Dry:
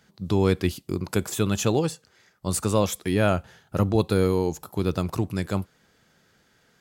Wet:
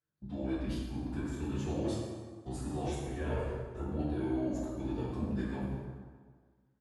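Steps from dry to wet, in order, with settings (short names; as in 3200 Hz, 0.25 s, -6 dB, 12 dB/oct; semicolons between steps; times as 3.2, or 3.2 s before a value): flange 0.58 Hz, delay 5.5 ms, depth 5.3 ms, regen -52%; reverse; compressor 5:1, threshold -38 dBFS, peak gain reduction 17.5 dB; reverse; notches 50/100/150/200/250/300/350/400/450 Hz; on a send: echo 0.848 s -20.5 dB; on the sum: formant-preserving pitch shift -6.5 st; bell 10000 Hz -12.5 dB 2.6 oct; gate -51 dBFS, range -27 dB; plate-style reverb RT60 1.6 s, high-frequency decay 0.65×, DRR -6 dB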